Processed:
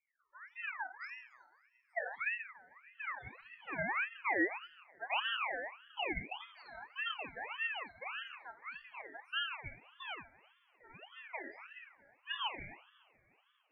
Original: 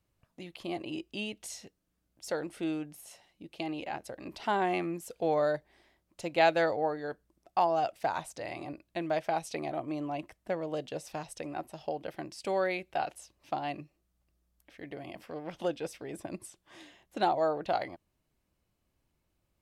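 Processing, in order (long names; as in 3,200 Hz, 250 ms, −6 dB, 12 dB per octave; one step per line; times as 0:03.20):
gliding playback speed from 114% → 172%
treble cut that deepens with the level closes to 1,000 Hz, closed at −29.5 dBFS
low-shelf EQ 100 Hz −3.5 dB
low-pass that shuts in the quiet parts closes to 1,300 Hz, open at −31 dBFS
phaser swept by the level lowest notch 290 Hz, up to 1,700 Hz, full sweep at −32.5 dBFS
spectral peaks only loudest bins 4
convolution reverb, pre-delay 3 ms, DRR −2.5 dB
ring modulator whose carrier an LFO sweeps 1,700 Hz, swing 35%, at 1.7 Hz
level −3 dB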